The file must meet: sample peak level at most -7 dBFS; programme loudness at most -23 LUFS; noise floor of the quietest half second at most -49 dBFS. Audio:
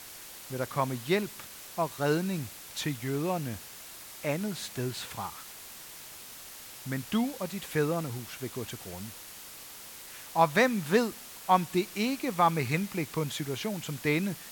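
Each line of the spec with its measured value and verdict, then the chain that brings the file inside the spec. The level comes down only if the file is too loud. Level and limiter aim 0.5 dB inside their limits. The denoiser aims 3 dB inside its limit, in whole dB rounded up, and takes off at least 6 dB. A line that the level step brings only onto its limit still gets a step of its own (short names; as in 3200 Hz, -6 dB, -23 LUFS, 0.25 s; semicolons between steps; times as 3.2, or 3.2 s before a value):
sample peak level -10.0 dBFS: OK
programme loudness -31.0 LUFS: OK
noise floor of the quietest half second -46 dBFS: fail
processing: denoiser 6 dB, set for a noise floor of -46 dBFS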